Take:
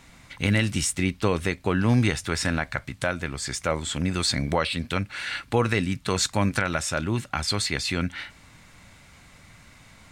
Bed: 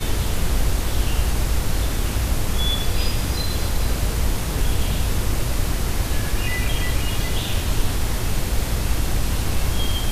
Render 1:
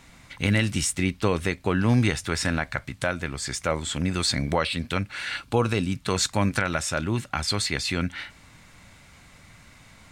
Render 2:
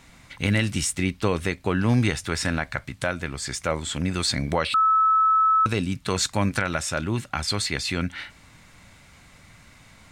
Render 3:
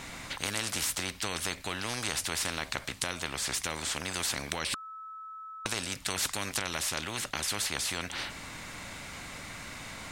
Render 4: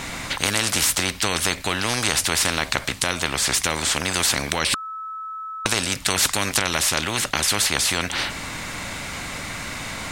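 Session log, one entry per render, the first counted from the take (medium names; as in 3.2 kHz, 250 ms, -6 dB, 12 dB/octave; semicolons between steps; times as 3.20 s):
5.37–5.96 s: peaking EQ 1.9 kHz -11 dB 0.35 oct
4.74–5.66 s: bleep 1.3 kHz -15.5 dBFS
spectrum-flattening compressor 4:1
trim +11.5 dB; peak limiter -1 dBFS, peak gain reduction 2.5 dB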